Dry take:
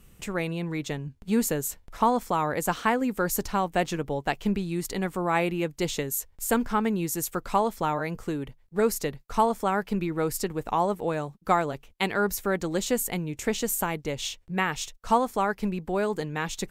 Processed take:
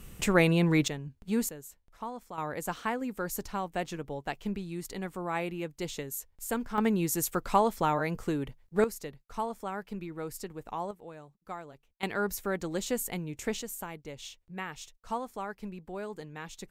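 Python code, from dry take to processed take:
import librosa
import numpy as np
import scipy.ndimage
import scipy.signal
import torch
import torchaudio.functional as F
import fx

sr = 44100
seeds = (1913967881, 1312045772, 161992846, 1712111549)

y = fx.gain(x, sr, db=fx.steps((0.0, 6.5), (0.88, -5.0), (1.49, -16.5), (2.38, -8.0), (6.78, -0.5), (8.84, -11.0), (10.91, -18.0), (12.03, -5.5), (13.62, -12.0)))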